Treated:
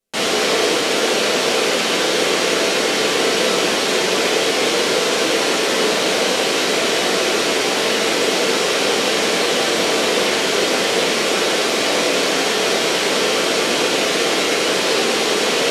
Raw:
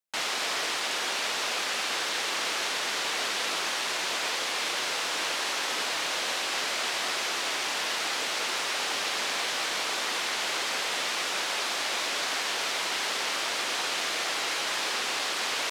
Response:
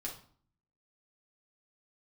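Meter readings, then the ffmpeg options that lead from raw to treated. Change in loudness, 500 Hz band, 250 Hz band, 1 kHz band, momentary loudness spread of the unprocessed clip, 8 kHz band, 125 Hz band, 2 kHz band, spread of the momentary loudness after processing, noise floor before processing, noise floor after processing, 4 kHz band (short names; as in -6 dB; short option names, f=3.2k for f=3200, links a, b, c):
+11.5 dB, +21.0 dB, +22.5 dB, +10.5 dB, 0 LU, +10.5 dB, n/a, +10.0 dB, 0 LU, -31 dBFS, -19 dBFS, +10.5 dB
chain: -filter_complex "[0:a]lowshelf=f=660:t=q:w=1.5:g=9,bandreject=f=50:t=h:w=6,bandreject=f=100:t=h:w=6,bandreject=f=150:t=h:w=6[a];[1:a]atrim=start_sample=2205,asetrate=26901,aresample=44100[b];[a][b]afir=irnorm=-1:irlink=0,volume=8.5dB"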